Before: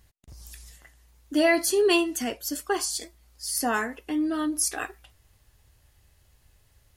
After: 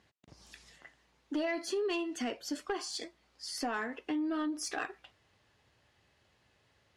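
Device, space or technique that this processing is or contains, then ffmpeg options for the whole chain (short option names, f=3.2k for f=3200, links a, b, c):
AM radio: -af "highpass=180,lowpass=4k,acompressor=threshold=-30dB:ratio=6,asoftclip=type=tanh:threshold=-25dB"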